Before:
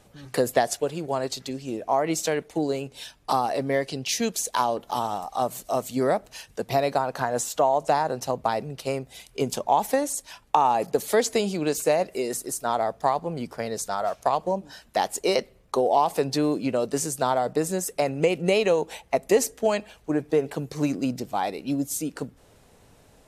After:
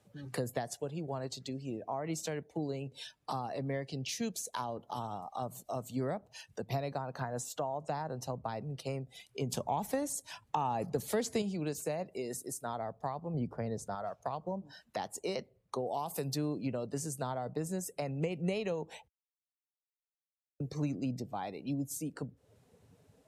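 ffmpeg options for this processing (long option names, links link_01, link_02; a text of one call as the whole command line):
ffmpeg -i in.wav -filter_complex "[0:a]asettb=1/sr,asplit=3[link_01][link_02][link_03];[link_01]atrim=end=9.504[link_04];[link_02]atrim=start=9.5:end=11.42,asetpts=PTS-STARTPTS,afade=type=in:duration=0.004:curve=qsin,afade=type=out:start_time=1.916:duration=0.004:curve=qsin,acontrast=55[link_05];[link_03]atrim=start=11.416[link_06];[link_04][link_05]acrossfade=duration=0.004:curve1=hsin:curve2=qsin[link_07];[link_07][link_06]acrossfade=duration=0.004:curve1=qsin:curve2=hsin,asettb=1/sr,asplit=3[link_08][link_09][link_10];[link_08]atrim=end=13.344[link_11];[link_09]atrim=start=13.34:end=13.95,asetpts=PTS-STARTPTS,afade=type=in:duration=0.004:curve=qsin,afade=type=out:start_time=0.606:duration=0.004:curve=qsin,tiltshelf=frequency=1400:gain=5[link_12];[link_10]atrim=start=13.946[link_13];[link_11][link_12]acrossfade=duration=0.004:curve1=hsin:curve2=qsin[link_14];[link_14][link_13]acrossfade=duration=0.004:curve1=qsin:curve2=hsin,asplit=3[link_15][link_16][link_17];[link_15]afade=type=out:start_time=15.86:duration=0.02[link_18];[link_16]aemphasis=mode=production:type=50fm,afade=type=in:start_time=15.86:duration=0.02,afade=type=out:start_time=16.34:duration=0.02[link_19];[link_17]afade=type=in:start_time=16.34:duration=0.02[link_20];[link_18][link_19][link_20]amix=inputs=3:normalize=0,asplit=3[link_21][link_22][link_23];[link_21]atrim=end=19.08,asetpts=PTS-STARTPTS,afade=type=out:start_time=19.076:duration=0.004:curve=hsin[link_24];[link_22]atrim=start=19.08:end=20.6,asetpts=PTS-STARTPTS,volume=0[link_25];[link_23]atrim=start=20.6,asetpts=PTS-STARTPTS,afade=type=in:duration=0.004:curve=hsin[link_26];[link_24][link_25][link_26]concat=n=3:v=0:a=1,highpass=82,afftdn=noise_reduction=14:noise_floor=-46,acrossover=split=160[link_27][link_28];[link_28]acompressor=threshold=-47dB:ratio=2[link_29];[link_27][link_29]amix=inputs=2:normalize=0" out.wav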